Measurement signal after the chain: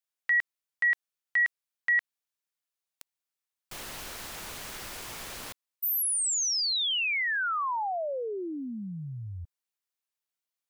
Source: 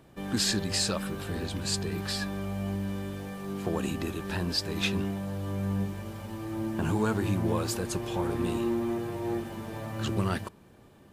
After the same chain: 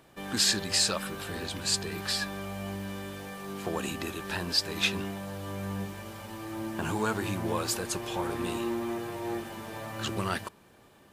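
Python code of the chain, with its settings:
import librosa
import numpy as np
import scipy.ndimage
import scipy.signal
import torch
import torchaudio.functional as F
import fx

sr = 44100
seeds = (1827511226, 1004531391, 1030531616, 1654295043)

y = fx.low_shelf(x, sr, hz=440.0, db=-10.5)
y = y * librosa.db_to_amplitude(3.5)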